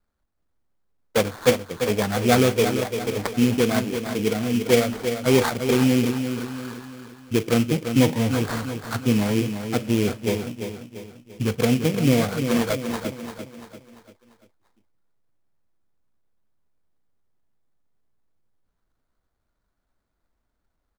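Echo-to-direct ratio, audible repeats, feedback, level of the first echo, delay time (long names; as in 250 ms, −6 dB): −7.0 dB, 4, 45%, −8.0 dB, 343 ms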